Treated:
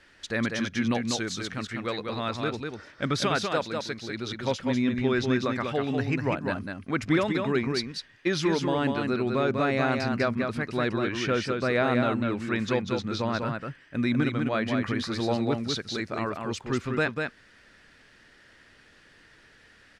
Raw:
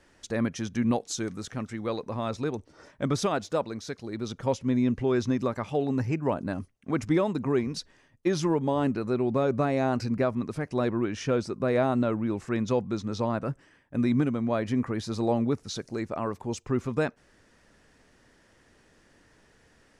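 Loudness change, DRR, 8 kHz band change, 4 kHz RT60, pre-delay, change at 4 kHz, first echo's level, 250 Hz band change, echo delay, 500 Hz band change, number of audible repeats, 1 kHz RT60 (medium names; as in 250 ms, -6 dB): +1.0 dB, no reverb, +0.5 dB, no reverb, no reverb, +8.0 dB, -4.5 dB, 0.0 dB, 196 ms, 0.0 dB, 1, no reverb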